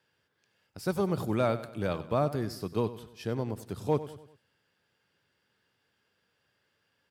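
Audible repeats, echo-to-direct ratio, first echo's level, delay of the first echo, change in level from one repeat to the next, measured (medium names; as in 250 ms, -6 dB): 4, -13.5 dB, -14.5 dB, 96 ms, -6.5 dB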